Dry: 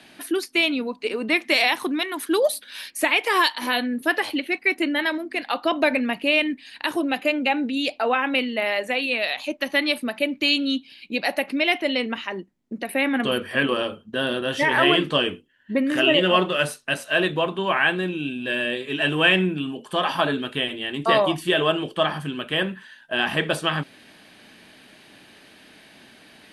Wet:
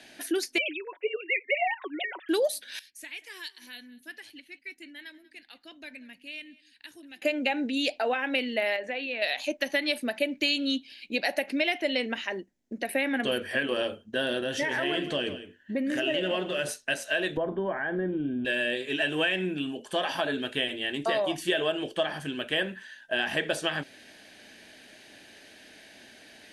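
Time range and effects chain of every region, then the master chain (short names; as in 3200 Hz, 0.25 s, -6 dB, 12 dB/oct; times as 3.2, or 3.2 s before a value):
0.58–2.29 sine-wave speech + HPF 580 Hz + comb 5.4 ms, depth 52%
2.79–7.22 passive tone stack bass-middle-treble 6-0-2 + echo 0.188 s -21 dB
8.76–9.22 LPF 3100 Hz + compressor 2:1, threshold -31 dBFS
14.43–16.69 bell 150 Hz +5 dB 2.5 oct + compressor 2:1, threshold -27 dBFS + echo 0.163 s -13 dB
17.37–18.45 compressor 2.5:1, threshold -25 dBFS + polynomial smoothing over 41 samples + tilt -2.5 dB/oct
whole clip: fifteen-band EQ 160 Hz -7 dB, 630 Hz +4 dB, 1600 Hz +7 dB, 6300 Hz +7 dB; compressor 6:1, threshold -18 dBFS; bell 1200 Hz -10.5 dB 0.75 oct; gain -3 dB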